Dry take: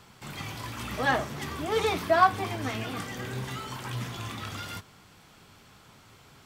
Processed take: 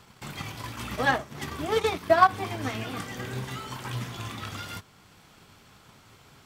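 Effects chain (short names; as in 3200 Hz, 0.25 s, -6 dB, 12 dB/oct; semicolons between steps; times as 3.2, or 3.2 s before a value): transient shaper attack +4 dB, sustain -10 dB, from 2.28 s sustain -2 dB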